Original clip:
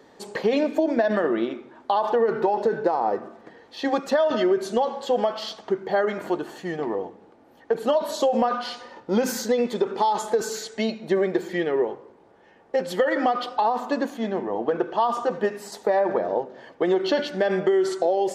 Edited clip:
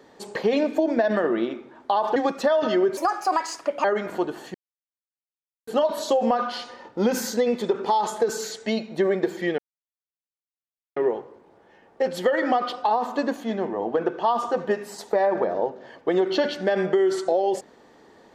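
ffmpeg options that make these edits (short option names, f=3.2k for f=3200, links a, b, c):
-filter_complex "[0:a]asplit=7[a][b][c][d][e][f][g];[a]atrim=end=2.162[h];[b]atrim=start=3.838:end=4.654[i];[c]atrim=start=4.65:end=5.96,asetpts=PTS-STARTPTS,asetrate=66150,aresample=44100[j];[d]atrim=start=5.956:end=6.66,asetpts=PTS-STARTPTS,afade=t=out:st=0.7:d=0.004:c=hsin[k];[e]atrim=start=6.66:end=7.79,asetpts=PTS-STARTPTS,volume=0[l];[f]atrim=start=7.79:end=11.7,asetpts=PTS-STARTPTS,afade=t=in:d=0.004:c=hsin,afade=t=out:st=3.906:d=0.004:c=hsin,apad=pad_dur=1.38[m];[g]atrim=start=11.7,asetpts=PTS-STARTPTS,afade=t=in:d=0.004:c=hsin[n];[h][i]acrossfade=d=0.004:c1=hsin:c2=hsin[o];[o][j]acrossfade=d=0.004:c1=hsin:c2=hsin[p];[k][l][m][n]concat=n=4:v=0:a=1[q];[p][q]acrossfade=d=0.004:c1=hsin:c2=hsin"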